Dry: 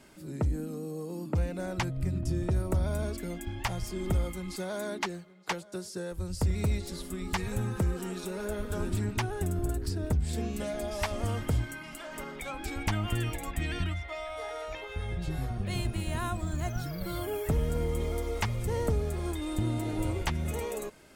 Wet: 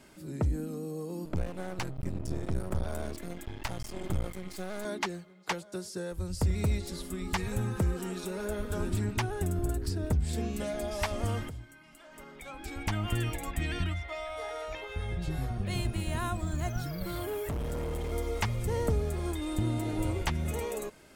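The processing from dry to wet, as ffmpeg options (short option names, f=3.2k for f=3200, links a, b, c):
-filter_complex "[0:a]asettb=1/sr,asplit=3[a][b][c];[a]atrim=end=1.254[d];[b]atrim=start=1.25:end=4.85,asetpts=PTS-STARTPTS,afade=t=in:d=0.004:c=qsin,afade=t=out:st=3.596:d=0.004:c=qsin,aeval=exprs='max(val(0),0)':c=same[e];[c]atrim=start=4.846[f];[d][e]acrossfade=d=0.004:c1=hsin:c2=qsin[g];[g][f]acrossfade=d=0.004:c1=qsin:c2=hsin,asettb=1/sr,asplit=3[h][i][j];[h]atrim=end=17.034[k];[i]atrim=start=17.03:end=18.12,asetpts=PTS-STARTPTS,afade=t=in:d=0.004:c=qsin,afade=t=out:st=1.086:d=0.004:c=qsin,asoftclip=type=hard:threshold=-31dB[l];[j]atrim=start=18.116[m];[k][l]acrossfade=d=0.004:c1=hsin:c2=qsin[n];[n][m]acrossfade=d=0.004:c1=qsin:c2=hsin,asplit=2[o][p];[o]atrim=end=11.49,asetpts=PTS-STARTPTS,afade=t=out:st=11.486:d=0.004:c=hsin:silence=0.188365[q];[p]atrim=start=11.49,asetpts=PTS-STARTPTS,afade=t=in:d=1.64:c=qua:silence=0.188365[r];[q][r]concat=n=2:v=0:a=1"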